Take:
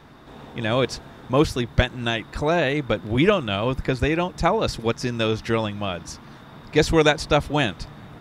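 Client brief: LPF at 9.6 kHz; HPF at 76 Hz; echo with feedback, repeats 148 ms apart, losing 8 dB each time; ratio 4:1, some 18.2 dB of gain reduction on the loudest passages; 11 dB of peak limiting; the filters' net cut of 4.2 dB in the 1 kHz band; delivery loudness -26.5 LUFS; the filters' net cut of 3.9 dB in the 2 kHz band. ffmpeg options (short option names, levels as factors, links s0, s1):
-af "highpass=76,lowpass=9600,equalizer=f=1000:t=o:g=-5,equalizer=f=2000:t=o:g=-3.5,acompressor=threshold=0.0158:ratio=4,alimiter=level_in=2.99:limit=0.0631:level=0:latency=1,volume=0.335,aecho=1:1:148|296|444|592|740:0.398|0.159|0.0637|0.0255|0.0102,volume=6.31"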